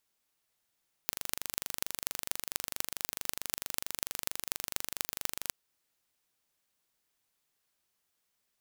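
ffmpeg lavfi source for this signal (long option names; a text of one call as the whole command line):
ffmpeg -f lavfi -i "aevalsrc='0.794*eq(mod(n,1800),0)*(0.5+0.5*eq(mod(n,10800),0))':duration=4.44:sample_rate=44100" out.wav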